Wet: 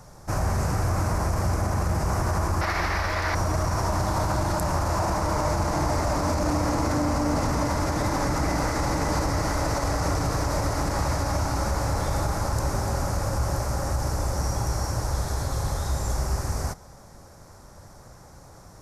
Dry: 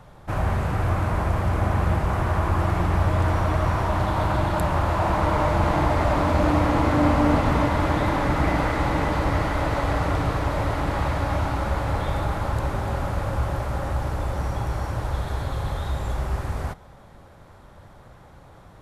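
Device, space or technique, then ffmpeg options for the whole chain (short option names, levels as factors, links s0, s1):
over-bright horn tweeter: -filter_complex "[0:a]highshelf=f=4300:t=q:w=3:g=9,alimiter=limit=0.158:level=0:latency=1:release=40,asettb=1/sr,asplit=3[s0][s1][s2];[s0]atrim=end=2.614[s3];[s1]atrim=start=2.61:end=3.35,asetpts=PTS-STARTPTS,afade=t=in:d=0.004:c=qsin,afade=t=out:st=0.736:d=0.004:c=qsin,equalizer=f=125:t=o:w=1:g=-12,equalizer=f=250:t=o:w=1:g=-4,equalizer=f=2000:t=o:w=1:g=12,equalizer=f=4000:t=o:w=1:g=10,equalizer=f=8000:t=o:w=1:g=-10[s4];[s2]atrim=start=3.346[s5];[s3][s4]acrossfade=d=0.004:c1=hsin:c2=qsin[s6];[s6][s5]acrossfade=d=0.004:c1=qsin:c2=hsin"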